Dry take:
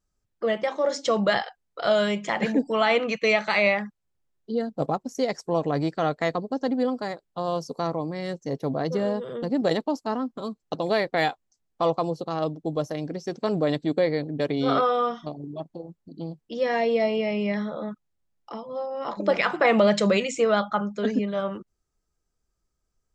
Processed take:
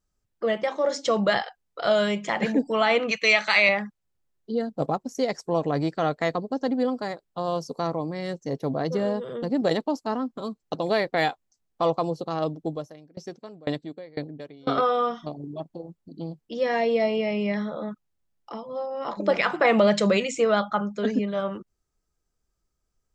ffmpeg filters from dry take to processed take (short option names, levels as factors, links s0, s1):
-filter_complex "[0:a]asettb=1/sr,asplit=3[s0][s1][s2];[s0]atrim=end=3.114[s3];[s1]atrim=start=3.11:end=3.69,asetpts=PTS-STARTPTS,afade=t=in:d=0.004:c=qsin,afade=t=out:st=0.576:d=0.004:c=qsin,tiltshelf=f=970:g=-7[s4];[s2]atrim=start=3.686[s5];[s3][s4]acrossfade=d=0.004:c1=hsin:c2=qsin[s6];[s6][s5]acrossfade=d=0.004:c1=qsin:c2=hsin,asettb=1/sr,asplit=3[s7][s8][s9];[s7]atrim=end=12.674[s10];[s8]atrim=start=12.67:end=14.78,asetpts=PTS-STARTPTS,afade=t=in:d=0.004:c=qsin,afade=t=out:st=2.106:d=0.004:c=qsin,aeval=exprs='val(0)*pow(10,-27*if(lt(mod(2*n/s,1),2*abs(2)/1000),1-mod(2*n/s,1)/(2*abs(2)/1000),(mod(2*n/s,1)-2*abs(2)/1000)/(1-2*abs(2)/1000))/20)':c=same[s11];[s9]atrim=start=14.776[s12];[s10][s11]acrossfade=d=0.004:c1=hsin:c2=qsin[s13];[s13][s12]acrossfade=d=0.004:c1=qsin:c2=hsin"